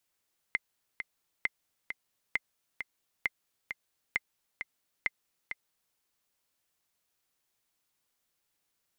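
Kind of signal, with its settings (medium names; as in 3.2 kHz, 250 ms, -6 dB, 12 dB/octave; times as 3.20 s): metronome 133 bpm, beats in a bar 2, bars 6, 2.08 kHz, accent 8 dB -14.5 dBFS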